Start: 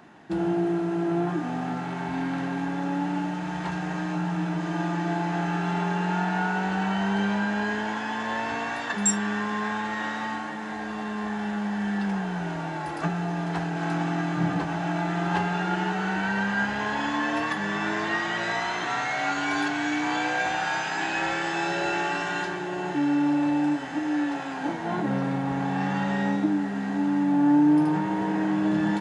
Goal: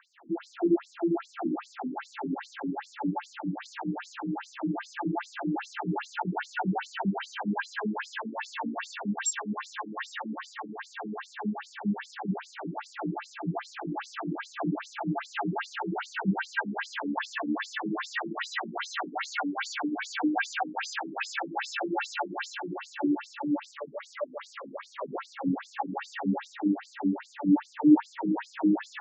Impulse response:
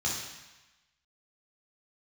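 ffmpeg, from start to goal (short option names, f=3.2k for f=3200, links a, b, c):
-filter_complex "[0:a]asplit=2[a][b];[1:a]atrim=start_sample=2205,afade=t=out:st=0.44:d=0.01,atrim=end_sample=19845,adelay=105[c];[b][c]afir=irnorm=-1:irlink=0,volume=-8.5dB[d];[a][d]amix=inputs=2:normalize=0,asettb=1/sr,asplit=3[e][f][g];[e]atrim=end=23.714[h];[f]atrim=start=23.71:end=25.15,asetpts=PTS-STARTPTS,afade=t=in:d=0.004:c=qsin,afade=t=out:st=1.436:d=0.004:c=qsin,aeval=exprs='val(0)*sin(2*PI*290*n/s)':c=same[i];[g]atrim=start=25.146[j];[h][i]acrossfade=d=0.004:c1=hsin:c2=qsin[k];[k][j]acrossfade=d=0.004:c1=qsin:c2=hsin,afftfilt=real='re*between(b*sr/1024,230*pow(6300/230,0.5+0.5*sin(2*PI*2.5*pts/sr))/1.41,230*pow(6300/230,0.5+0.5*sin(2*PI*2.5*pts/sr))*1.41)':imag='im*between(b*sr/1024,230*pow(6300/230,0.5+0.5*sin(2*PI*2.5*pts/sr))/1.41,230*pow(6300/230,0.5+0.5*sin(2*PI*2.5*pts/sr))*1.41)':win_size=1024:overlap=0.75"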